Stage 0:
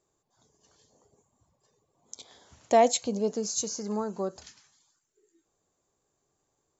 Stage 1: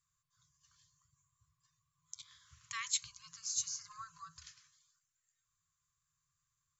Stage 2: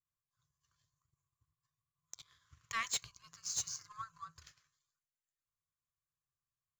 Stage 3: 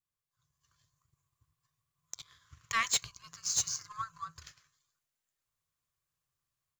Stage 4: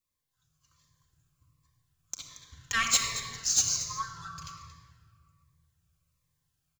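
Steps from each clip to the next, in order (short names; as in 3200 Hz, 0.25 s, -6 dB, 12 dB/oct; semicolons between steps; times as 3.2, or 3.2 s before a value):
FFT band-reject 170–1000 Hz; gain -5 dB
overloaded stage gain 30.5 dB; power-law curve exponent 1.4; high shelf 2400 Hz -11 dB; gain +10.5 dB
AGC gain up to 7 dB
echo 0.228 s -14 dB; shoebox room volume 3800 m³, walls mixed, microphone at 2.1 m; cascading phaser falling 1.3 Hz; gain +4.5 dB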